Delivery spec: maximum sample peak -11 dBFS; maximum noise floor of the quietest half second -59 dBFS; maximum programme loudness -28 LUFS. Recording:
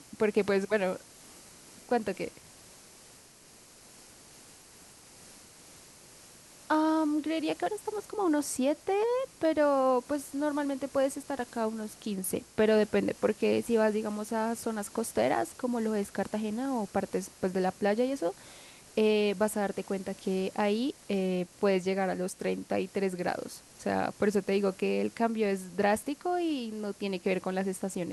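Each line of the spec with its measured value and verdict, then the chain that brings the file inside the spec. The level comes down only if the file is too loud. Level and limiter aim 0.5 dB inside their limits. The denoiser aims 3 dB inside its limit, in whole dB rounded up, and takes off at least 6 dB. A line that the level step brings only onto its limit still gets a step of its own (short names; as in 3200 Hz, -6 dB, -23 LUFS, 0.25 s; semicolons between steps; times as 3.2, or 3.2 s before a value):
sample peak -14.5 dBFS: OK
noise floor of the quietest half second -55 dBFS: fail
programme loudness -30.5 LUFS: OK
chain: denoiser 7 dB, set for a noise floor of -55 dBFS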